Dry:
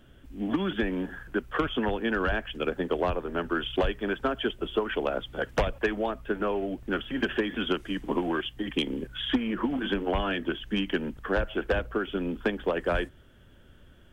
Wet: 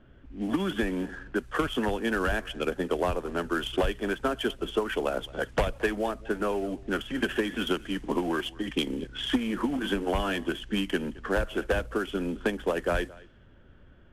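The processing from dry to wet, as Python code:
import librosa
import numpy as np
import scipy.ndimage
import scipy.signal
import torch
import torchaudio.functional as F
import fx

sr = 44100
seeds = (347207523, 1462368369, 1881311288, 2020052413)

y = fx.cvsd(x, sr, bps=64000)
y = y + 10.0 ** (-22.0 / 20.0) * np.pad(y, (int(220 * sr / 1000.0), 0))[:len(y)]
y = fx.env_lowpass(y, sr, base_hz=1900.0, full_db=-26.5)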